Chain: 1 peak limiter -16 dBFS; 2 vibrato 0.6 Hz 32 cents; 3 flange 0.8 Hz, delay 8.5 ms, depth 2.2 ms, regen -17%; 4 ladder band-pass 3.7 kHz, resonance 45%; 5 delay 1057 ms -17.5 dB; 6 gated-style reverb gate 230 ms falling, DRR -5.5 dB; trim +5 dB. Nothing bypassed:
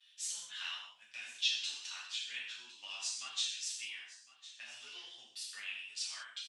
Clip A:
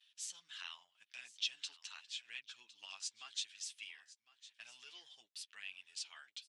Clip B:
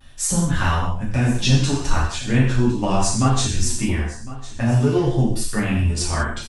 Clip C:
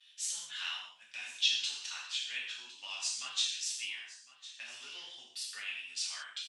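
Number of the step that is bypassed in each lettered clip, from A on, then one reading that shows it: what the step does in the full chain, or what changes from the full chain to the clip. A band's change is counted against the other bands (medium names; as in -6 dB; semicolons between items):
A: 6, momentary loudness spread change +2 LU; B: 4, 500 Hz band +28.5 dB; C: 3, loudness change +3.5 LU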